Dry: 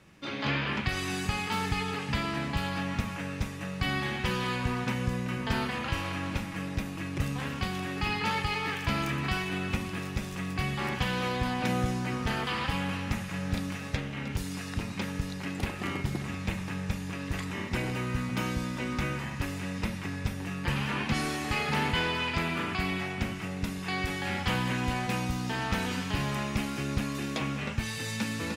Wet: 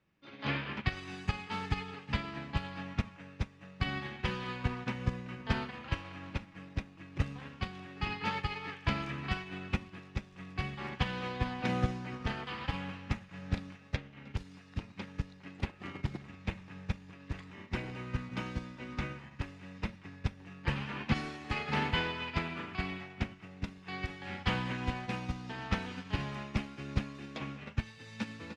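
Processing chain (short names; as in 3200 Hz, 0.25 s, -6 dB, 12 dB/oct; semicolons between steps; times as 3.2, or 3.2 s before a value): LPF 4600 Hz 12 dB/oct; upward expander 2.5:1, over -38 dBFS; gain +1.5 dB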